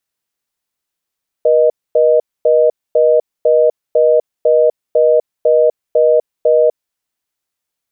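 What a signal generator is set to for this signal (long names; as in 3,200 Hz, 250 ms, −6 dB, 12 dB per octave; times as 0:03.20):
call progress tone reorder tone, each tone −10 dBFS 5.29 s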